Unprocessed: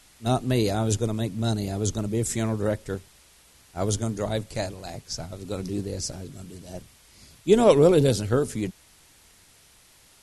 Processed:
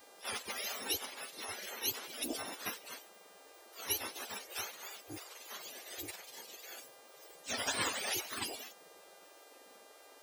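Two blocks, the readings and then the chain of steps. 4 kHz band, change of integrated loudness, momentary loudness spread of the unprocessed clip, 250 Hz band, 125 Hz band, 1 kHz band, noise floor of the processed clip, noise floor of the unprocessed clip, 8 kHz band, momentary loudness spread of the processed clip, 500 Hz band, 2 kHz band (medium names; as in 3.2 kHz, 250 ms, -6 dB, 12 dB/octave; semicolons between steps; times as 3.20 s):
-3.5 dB, -14.5 dB, 21 LU, -24.0 dB, -33.0 dB, -11.5 dB, -59 dBFS, -56 dBFS, -6.0 dB, 21 LU, -24.5 dB, -2.0 dB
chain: spectrum inverted on a logarithmic axis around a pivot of 1.1 kHz; mains buzz 400 Hz, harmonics 38, -64 dBFS -3 dB/octave; spectral gate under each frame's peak -20 dB weak; trim +3.5 dB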